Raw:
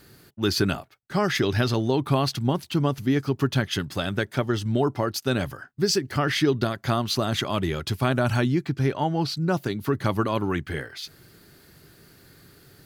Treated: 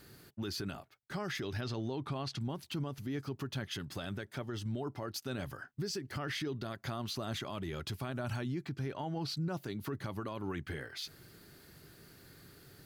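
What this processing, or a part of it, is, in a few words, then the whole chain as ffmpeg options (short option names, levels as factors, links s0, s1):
stacked limiters: -filter_complex "[0:a]asettb=1/sr,asplit=3[s0][s1][s2];[s0]atrim=end=1.614[s3];[s1]atrim=start=1.61:end=2.41,asetpts=PTS-STARTPTS,afade=t=in:d=0.004:c=qsin,afade=t=out:st=0.796:d=0.004:c=qsin,lowpass=7100[s4];[s2]atrim=start=2.406[s5];[s3][s4]acrossfade=d=0.004:c1=hsin:c2=qsin[s6];[s6][s5]acrossfade=d=0.004:c1=qsin:c2=hsin,alimiter=limit=0.158:level=0:latency=1:release=494,alimiter=limit=0.0944:level=0:latency=1:release=267,alimiter=level_in=1.12:limit=0.0631:level=0:latency=1:release=33,volume=0.891,volume=0.596"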